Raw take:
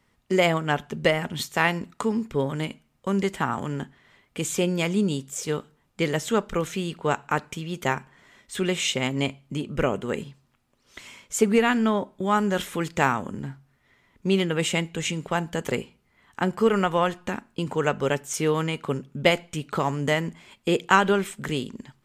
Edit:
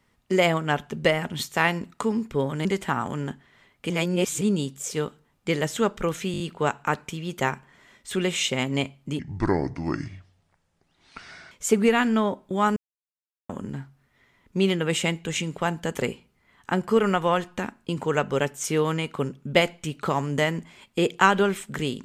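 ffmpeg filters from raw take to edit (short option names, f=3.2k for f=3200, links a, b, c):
-filter_complex "[0:a]asplit=12[a][b][c][d][e][f][g][h][i][j][k][l];[a]atrim=end=2.652[m];[b]atrim=start=3.168:end=4.422[n];[c]atrim=start=4.418:end=4.932,asetpts=PTS-STARTPTS,areverse[o];[d]atrim=start=4.928:end=6.862[p];[e]atrim=start=6.838:end=6.862[q];[f]atrim=start=6.838:end=6.862[r];[g]atrim=start=6.838:end=6.862[s];[h]atrim=start=6.838:end=9.634[t];[i]atrim=start=9.63:end=11.21,asetpts=PTS-STARTPTS,asetrate=29988,aresample=44100[u];[j]atrim=start=11.206:end=12.46,asetpts=PTS-STARTPTS,afade=t=out:st=1.25:d=0.004:c=hsin[v];[k]atrim=start=12.46:end=13.19,asetpts=PTS-STARTPTS,volume=0[w];[l]atrim=start=13.19,asetpts=PTS-STARTPTS,afade=t=in:d=0.004:c=hsin[x];[m][n]acrossfade=d=0.004:c1=hsin:c2=hsin[y];[y][o]acrossfade=d=0.004:c1=hsin:c2=hsin[z];[z][p]acrossfade=d=0.004:c1=hsin:c2=hsin[aa];[aa][q]acrossfade=d=0.004:c1=hsin:c2=hsin[ab];[ab][r]acrossfade=d=0.004:c1=hsin:c2=hsin[ac];[ac][s]acrossfade=d=0.004:c1=hsin:c2=hsin[ad];[ad][t]acrossfade=d=0.004:c1=hsin:c2=hsin[ae];[ae][u]acrossfade=d=0.004:c1=hsin:c2=hsin[af];[v][w][x]concat=n=3:v=0:a=1[ag];[af][ag]acrossfade=d=0.004:c1=hsin:c2=hsin"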